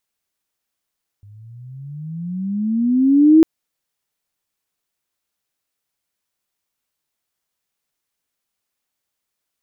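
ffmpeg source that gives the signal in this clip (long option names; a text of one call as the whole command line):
ffmpeg -f lavfi -i "aevalsrc='pow(10,(-5+35*(t/2.2-1))/20)*sin(2*PI*100*2.2/(20.5*log(2)/12)*(exp(20.5*log(2)/12*t/2.2)-1))':duration=2.2:sample_rate=44100" out.wav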